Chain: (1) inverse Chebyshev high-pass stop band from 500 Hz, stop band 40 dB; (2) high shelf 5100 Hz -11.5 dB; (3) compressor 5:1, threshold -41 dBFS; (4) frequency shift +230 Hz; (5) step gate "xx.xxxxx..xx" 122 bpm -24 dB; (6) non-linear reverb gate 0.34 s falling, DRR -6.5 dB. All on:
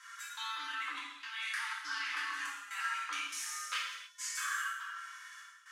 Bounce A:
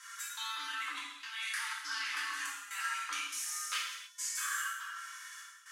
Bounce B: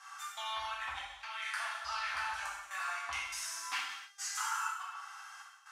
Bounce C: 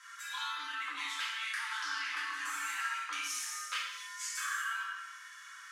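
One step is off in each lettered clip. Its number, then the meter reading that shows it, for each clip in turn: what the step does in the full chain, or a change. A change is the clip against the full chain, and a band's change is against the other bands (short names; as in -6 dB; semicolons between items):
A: 2, 8 kHz band +4.5 dB; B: 4, 1 kHz band +4.0 dB; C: 5, momentary loudness spread change -3 LU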